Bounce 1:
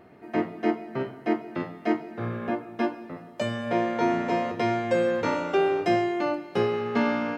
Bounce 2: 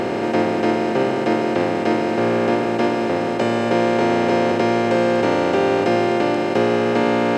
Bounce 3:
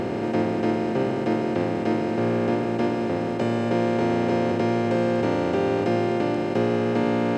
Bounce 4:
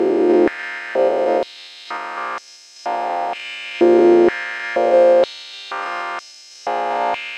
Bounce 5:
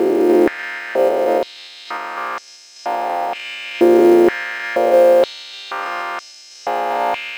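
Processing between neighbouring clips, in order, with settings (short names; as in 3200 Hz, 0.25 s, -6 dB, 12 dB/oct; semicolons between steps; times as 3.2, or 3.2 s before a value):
per-bin compression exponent 0.2
low shelf 260 Hz +11 dB; gain -8.5 dB
stepped spectrum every 0.1 s; stepped high-pass 2.1 Hz 360–5600 Hz; gain +4.5 dB
short-mantissa float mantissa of 4-bit; gain +1 dB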